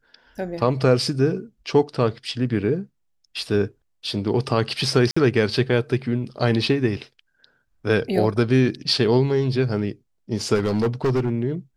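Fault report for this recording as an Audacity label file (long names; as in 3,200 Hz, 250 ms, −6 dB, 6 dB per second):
5.110000	5.170000	drop-out 55 ms
10.540000	11.300000	clipping −16.5 dBFS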